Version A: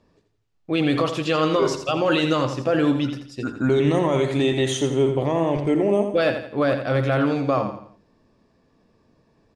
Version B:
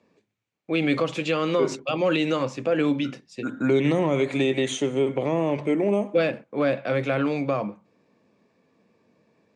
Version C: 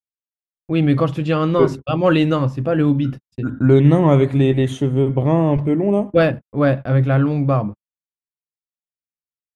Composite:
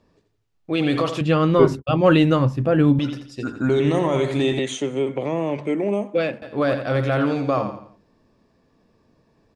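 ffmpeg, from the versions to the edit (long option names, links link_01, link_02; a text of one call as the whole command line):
ffmpeg -i take0.wav -i take1.wav -i take2.wav -filter_complex "[0:a]asplit=3[link_01][link_02][link_03];[link_01]atrim=end=1.212[link_04];[2:a]atrim=start=1.208:end=2.992[link_05];[link_02]atrim=start=2.988:end=4.592[link_06];[1:a]atrim=start=4.588:end=6.422[link_07];[link_03]atrim=start=6.418[link_08];[link_04][link_05]acrossfade=duration=0.004:curve1=hsin:curve2=hsin[link_09];[link_09][link_06]acrossfade=duration=0.004:curve1=hsin:curve2=hsin[link_10];[link_10][link_07]acrossfade=duration=0.004:curve1=hsin:curve2=hsin[link_11];[link_11][link_08]acrossfade=duration=0.004:curve1=hsin:curve2=hsin" out.wav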